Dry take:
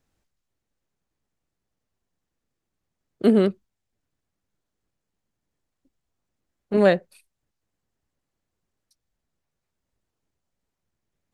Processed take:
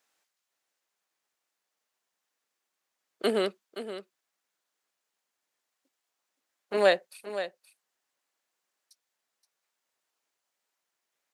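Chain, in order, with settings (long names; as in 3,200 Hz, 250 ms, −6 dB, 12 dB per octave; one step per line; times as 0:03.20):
Bessel high-pass filter 940 Hz, order 2
dynamic equaliser 1,500 Hz, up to −6 dB, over −38 dBFS, Q 0.82
on a send: single-tap delay 523 ms −11.5 dB
on the sum: level +5 dB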